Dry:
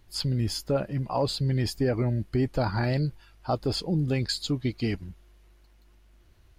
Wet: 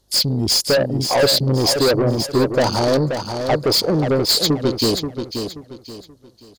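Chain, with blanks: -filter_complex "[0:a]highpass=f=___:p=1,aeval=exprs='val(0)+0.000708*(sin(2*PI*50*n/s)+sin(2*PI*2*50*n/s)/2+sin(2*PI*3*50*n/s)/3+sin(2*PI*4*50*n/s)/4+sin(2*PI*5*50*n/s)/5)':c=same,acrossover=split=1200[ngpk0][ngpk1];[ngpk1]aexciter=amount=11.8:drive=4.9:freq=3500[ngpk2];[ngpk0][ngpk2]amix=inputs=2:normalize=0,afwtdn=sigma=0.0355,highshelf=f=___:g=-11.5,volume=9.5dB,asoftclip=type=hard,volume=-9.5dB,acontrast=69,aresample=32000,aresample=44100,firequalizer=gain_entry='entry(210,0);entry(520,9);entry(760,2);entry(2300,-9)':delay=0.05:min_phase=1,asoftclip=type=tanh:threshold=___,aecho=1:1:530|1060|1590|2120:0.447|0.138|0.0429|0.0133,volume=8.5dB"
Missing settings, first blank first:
340, 7400, -21.5dB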